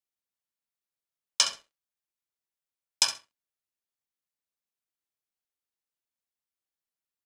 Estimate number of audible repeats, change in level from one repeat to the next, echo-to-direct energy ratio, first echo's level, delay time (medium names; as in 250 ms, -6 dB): 2, -15.5 dB, -12.0 dB, -12.0 dB, 66 ms